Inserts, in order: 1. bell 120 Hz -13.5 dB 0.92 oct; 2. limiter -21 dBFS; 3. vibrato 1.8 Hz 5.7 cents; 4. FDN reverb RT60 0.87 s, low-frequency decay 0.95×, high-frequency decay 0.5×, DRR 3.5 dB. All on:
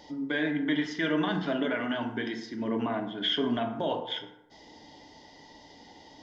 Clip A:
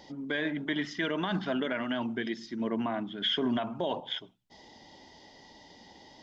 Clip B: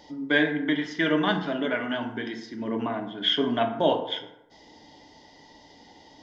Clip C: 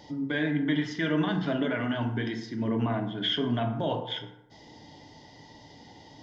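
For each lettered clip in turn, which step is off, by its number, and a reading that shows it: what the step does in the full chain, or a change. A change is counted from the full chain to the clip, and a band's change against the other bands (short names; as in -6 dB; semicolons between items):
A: 4, loudness change -2.0 LU; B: 2, crest factor change +4.0 dB; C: 1, 125 Hz band +9.0 dB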